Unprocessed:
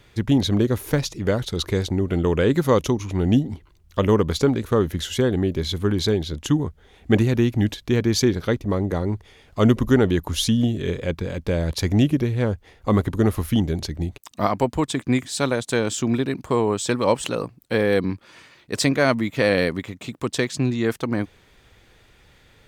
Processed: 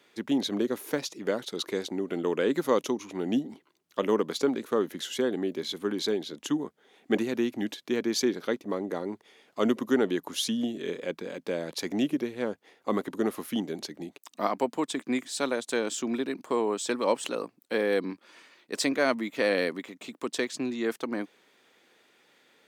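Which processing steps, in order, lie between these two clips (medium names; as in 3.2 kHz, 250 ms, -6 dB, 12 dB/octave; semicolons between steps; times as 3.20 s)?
high-pass 230 Hz 24 dB/octave; trim -6 dB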